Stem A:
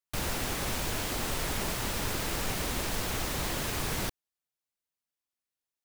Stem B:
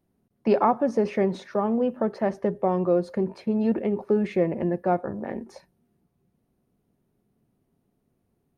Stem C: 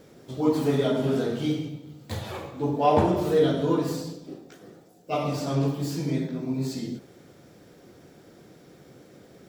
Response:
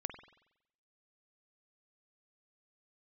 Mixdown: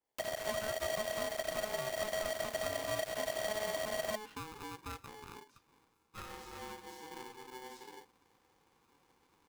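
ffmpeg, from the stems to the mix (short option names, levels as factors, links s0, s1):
-filter_complex "[0:a]aeval=exprs='max(val(0),0)':c=same,acrossover=split=170[s0][s1];[s1]acompressor=threshold=0.00447:ratio=2[s2];[s0][s2]amix=inputs=2:normalize=0,adelay=50,volume=1.33[s3];[1:a]volume=0.126,asplit=2[s4][s5];[2:a]adelay=1050,volume=0.106[s6];[s5]apad=whole_len=464679[s7];[s6][s7]sidechaincompress=threshold=0.001:ratio=12:attack=43:release=452[s8];[s3][s4][s8]amix=inputs=3:normalize=0,acrossover=split=83|260|880|4300[s9][s10][s11][s12][s13];[s9]acompressor=threshold=0.0178:ratio=4[s14];[s10]acompressor=threshold=0.00282:ratio=4[s15];[s11]acompressor=threshold=0.00562:ratio=4[s16];[s12]acompressor=threshold=0.00355:ratio=4[s17];[s13]acompressor=threshold=0.00282:ratio=4[s18];[s14][s15][s16][s17][s18]amix=inputs=5:normalize=0,aeval=exprs='val(0)*sgn(sin(2*PI*640*n/s))':c=same"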